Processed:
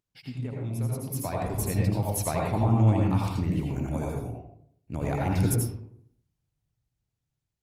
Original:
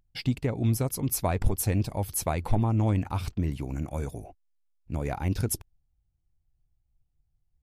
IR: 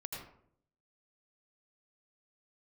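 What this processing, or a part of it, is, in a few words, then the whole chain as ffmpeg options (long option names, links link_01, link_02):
far-field microphone of a smart speaker: -filter_complex "[0:a]asettb=1/sr,asplit=3[link_01][link_02][link_03];[link_01]atrim=end=4.104[link_04];[link_02]atrim=start=4.1:end=5.09,asetpts=PTS-STARTPTS,afade=type=in:duration=0.004:curve=qsin,afade=type=out:start_time=0.986:duration=0.004:curve=qsin,adynamicequalizer=threshold=0.00158:dfrequency=800:dqfactor=3.9:tfrequency=800:tqfactor=3.9:attack=5:release=100:ratio=0.375:range=1.5:mode=cutabove:tftype=bell[link_05];[link_03]atrim=start=5.086[link_06];[link_04][link_05]acrossfade=duration=0.004:curve1=hsin:curve2=qsin[link_07];[link_07][link_06]acrossfade=duration=0.004:curve1=qsin:curve2=hsin[link_08];[1:a]atrim=start_sample=2205[link_09];[link_08][link_09]afir=irnorm=-1:irlink=0,highpass=91,dynaudnorm=framelen=420:gausssize=7:maxgain=11.5dB,volume=-7dB" -ar 48000 -c:a libopus -b:a 32k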